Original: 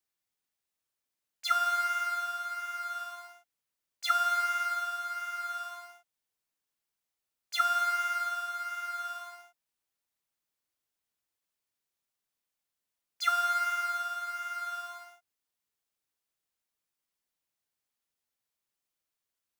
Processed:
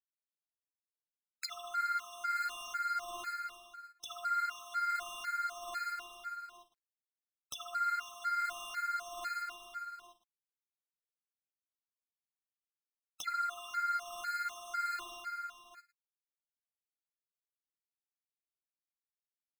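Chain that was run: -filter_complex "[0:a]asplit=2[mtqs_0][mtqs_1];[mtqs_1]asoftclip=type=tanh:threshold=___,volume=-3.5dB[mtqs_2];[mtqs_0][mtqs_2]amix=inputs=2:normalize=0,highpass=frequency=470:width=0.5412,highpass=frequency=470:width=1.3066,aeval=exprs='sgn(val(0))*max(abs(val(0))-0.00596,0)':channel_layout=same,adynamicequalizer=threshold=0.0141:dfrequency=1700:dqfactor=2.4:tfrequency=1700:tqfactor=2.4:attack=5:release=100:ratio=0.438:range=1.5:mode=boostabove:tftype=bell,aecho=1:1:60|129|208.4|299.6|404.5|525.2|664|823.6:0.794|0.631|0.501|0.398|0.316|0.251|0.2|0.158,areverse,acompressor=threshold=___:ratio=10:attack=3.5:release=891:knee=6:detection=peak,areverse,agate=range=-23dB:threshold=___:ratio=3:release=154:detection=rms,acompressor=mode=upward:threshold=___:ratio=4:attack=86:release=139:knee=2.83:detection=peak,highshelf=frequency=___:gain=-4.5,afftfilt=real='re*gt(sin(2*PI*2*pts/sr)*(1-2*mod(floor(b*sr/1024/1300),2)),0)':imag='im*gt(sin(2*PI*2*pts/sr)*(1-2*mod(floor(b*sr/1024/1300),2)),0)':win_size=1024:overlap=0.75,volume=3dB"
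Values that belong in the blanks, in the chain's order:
-28dB, -32dB, -55dB, -50dB, 4800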